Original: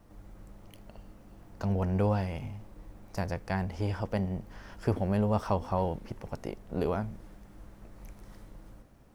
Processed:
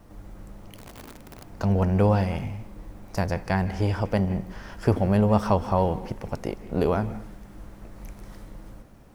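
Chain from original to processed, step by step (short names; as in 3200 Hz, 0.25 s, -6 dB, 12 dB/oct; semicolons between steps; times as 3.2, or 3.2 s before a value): 0.77–1.44 wrapped overs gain 44.5 dB; on a send: reverb RT60 0.55 s, pre-delay 0.147 s, DRR 14 dB; on the sum: gain +7 dB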